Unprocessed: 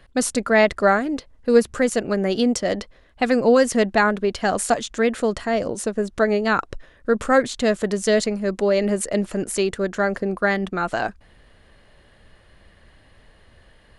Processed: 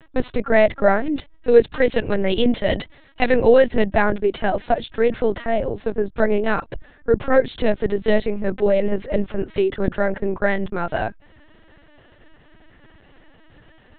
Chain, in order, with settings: treble shelf 2.2 kHz -3.5 dB, from 1.06 s +7.5 dB, from 3.67 s -3.5 dB; LPC vocoder at 8 kHz pitch kept; dynamic bell 1.2 kHz, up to -7 dB, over -39 dBFS, Q 2.5; trim +2.5 dB

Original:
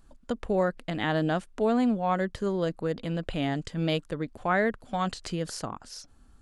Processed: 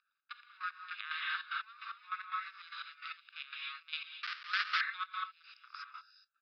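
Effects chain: local Wiener filter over 41 samples; comb 0.8 ms, depth 55%; gated-style reverb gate 270 ms rising, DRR -2.5 dB; 2.53–3.26 s: spectral gate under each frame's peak -20 dB weak; 4.23–4.81 s: Schmitt trigger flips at -39.5 dBFS; compression 2:1, threshold -34 dBFS, peak gain reduction 9.5 dB; trance gate "xx.x..x..x.x" 149 bpm -12 dB; Chebyshev band-pass 1.2–5.1 kHz, order 5; 0.63–1.21 s: three bands compressed up and down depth 70%; trim +4.5 dB

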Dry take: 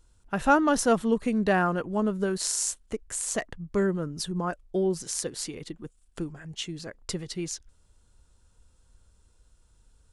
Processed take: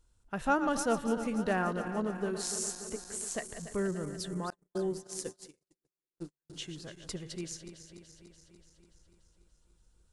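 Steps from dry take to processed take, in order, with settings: backward echo that repeats 145 ms, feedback 79%, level -11 dB; 4.50–6.50 s: gate -30 dBFS, range -52 dB; trim -7.5 dB

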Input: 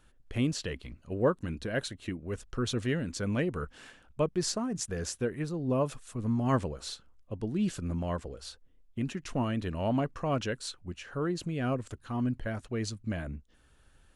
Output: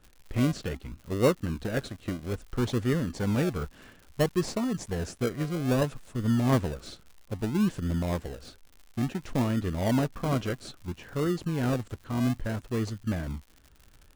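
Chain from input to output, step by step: treble shelf 3.2 kHz -8.5 dB; in parallel at -3 dB: decimation with a swept rate 39×, swing 60% 0.6 Hz; on the sum: crackle 130 per s -42 dBFS

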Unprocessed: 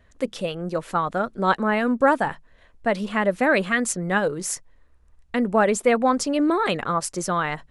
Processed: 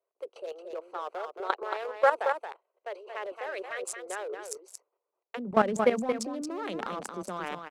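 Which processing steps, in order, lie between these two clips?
local Wiener filter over 25 samples; gate -52 dBFS, range -12 dB; steep high-pass 370 Hz 72 dB/octave, from 5.37 s 180 Hz; level held to a coarse grid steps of 17 dB; transient shaper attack +1 dB, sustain +6 dB; delay 226 ms -6.5 dB; trim -2 dB; AAC 128 kbps 48 kHz

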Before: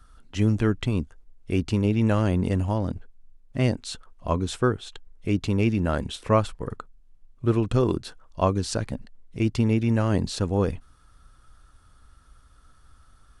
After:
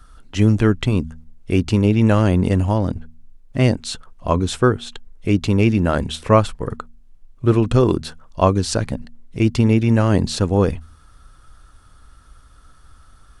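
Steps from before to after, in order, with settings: de-hum 79.21 Hz, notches 3; trim +7 dB

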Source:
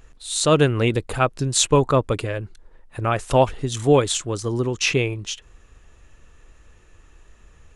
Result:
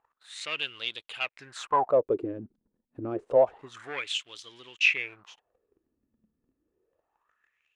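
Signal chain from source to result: 0.80–1.89 s: dynamic bell 720 Hz, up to +7 dB, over -32 dBFS, Q 1.6; waveshaping leveller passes 2; wah-wah 0.28 Hz 220–3400 Hz, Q 5.5; trim -3 dB

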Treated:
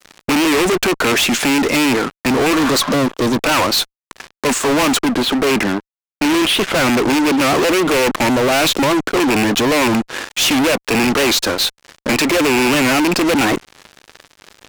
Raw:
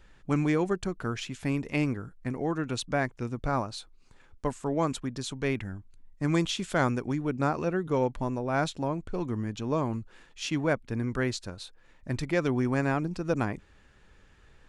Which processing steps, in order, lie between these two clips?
rattle on loud lows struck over -33 dBFS, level -26 dBFS; high-pass 270 Hz 24 dB/octave; treble shelf 7.3 kHz -7 dB; 2.61–3.35 s: spectral replace 570–3400 Hz both; 4.98–7.02 s: distance through air 400 m; fuzz box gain 51 dB, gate -58 dBFS; warped record 78 rpm, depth 160 cents

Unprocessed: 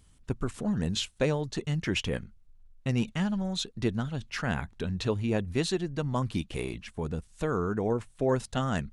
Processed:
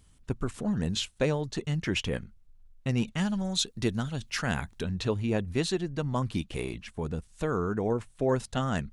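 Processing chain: 3.18–4.84 s: treble shelf 4.3 kHz +10 dB

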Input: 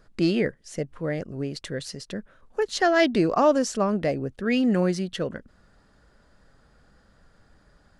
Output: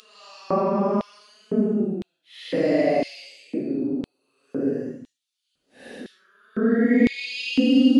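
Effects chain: dynamic bell 1.5 kHz, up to -4 dB, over -38 dBFS, Q 1.8; Paulstretch 9.7×, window 0.05 s, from 3.78 s; LFO high-pass square 0.99 Hz 260–3500 Hz

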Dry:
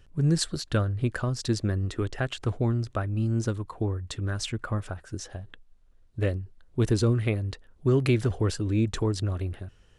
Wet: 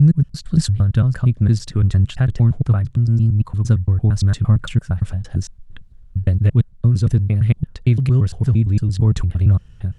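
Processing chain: slices played last to first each 114 ms, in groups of 3; resonant low shelf 240 Hz +11.5 dB, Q 1.5; gain riding within 4 dB 0.5 s

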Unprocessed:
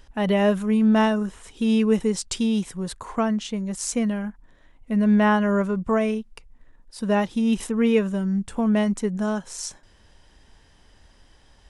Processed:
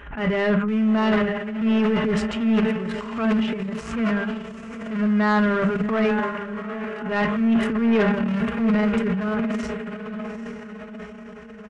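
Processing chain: local Wiener filter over 9 samples; in parallel at -4.5 dB: Schmitt trigger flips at -20.5 dBFS; on the sum: high-pass 48 Hz 24 dB/octave; high-order bell 1.9 kHz +10.5 dB; echo that smears into a reverb 831 ms, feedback 52%, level -11 dB; on a send at -10 dB: reverberation RT60 0.30 s, pre-delay 4 ms; on the sum: transient shaper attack -9 dB, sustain +11 dB; tape spacing loss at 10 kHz 21 dB; hum notches 50/100/150/200 Hz; comb 4.9 ms, depth 35%; saturation -11 dBFS, distortion -15 dB; swell ahead of each attack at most 90 dB/s; trim -2.5 dB

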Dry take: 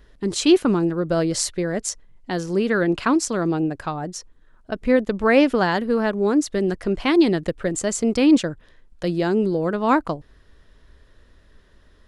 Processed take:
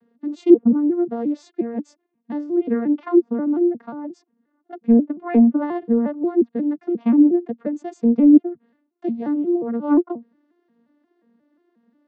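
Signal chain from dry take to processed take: vocoder on a broken chord major triad, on A#3, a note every 178 ms; low-pass that closes with the level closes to 610 Hz, closed at -12.5 dBFS; tilt EQ -3 dB/octave; trim -2.5 dB

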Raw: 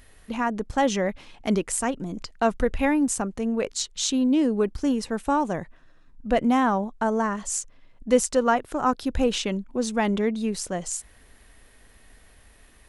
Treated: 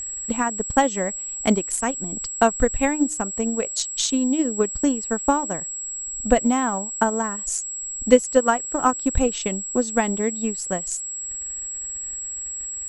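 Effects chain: de-hum 305.4 Hz, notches 2; transient shaper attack +9 dB, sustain -9 dB; whistle 7.7 kHz -27 dBFS; trim -1.5 dB

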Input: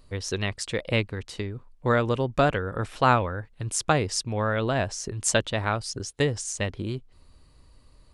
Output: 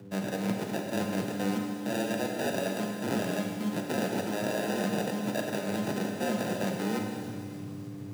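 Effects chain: reverse; compression 12:1, threshold -37 dBFS, peak gain reduction 23 dB; reverse; sample-and-hold 42×; mains buzz 100 Hz, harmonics 4, -58 dBFS; on a send: feedback echo behind a high-pass 296 ms, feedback 71%, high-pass 4.2 kHz, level -14.5 dB; on the sum: frequency shift +95 Hz; Schroeder reverb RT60 2.4 s, combs from 30 ms, DRR 1.5 dB; trim +7.5 dB

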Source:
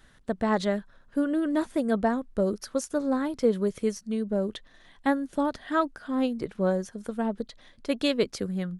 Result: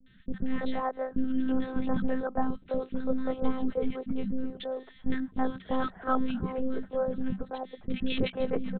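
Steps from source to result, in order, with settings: monotone LPC vocoder at 8 kHz 260 Hz; peaking EQ 190 Hz +14 dB 0.32 oct; three bands offset in time lows, highs, mids 60/330 ms, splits 370/1600 Hz

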